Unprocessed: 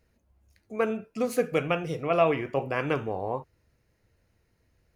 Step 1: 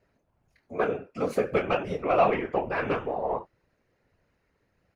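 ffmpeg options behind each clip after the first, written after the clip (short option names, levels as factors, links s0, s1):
-filter_complex "[0:a]asplit=2[s0][s1];[s1]highpass=f=720:p=1,volume=3.55,asoftclip=type=tanh:threshold=0.335[s2];[s0][s2]amix=inputs=2:normalize=0,lowpass=f=1300:p=1,volume=0.501,asplit=2[s3][s4];[s4]adelay=25,volume=0.398[s5];[s3][s5]amix=inputs=2:normalize=0,afftfilt=real='hypot(re,im)*cos(2*PI*random(0))':imag='hypot(re,im)*sin(2*PI*random(1))':win_size=512:overlap=0.75,volume=1.88"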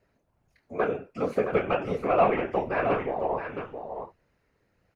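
-filter_complex "[0:a]acrossover=split=3100[s0][s1];[s1]acompressor=threshold=0.00158:ratio=4:attack=1:release=60[s2];[s0][s2]amix=inputs=2:normalize=0,aecho=1:1:668:0.422"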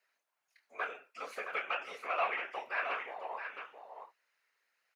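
-af "highpass=1500"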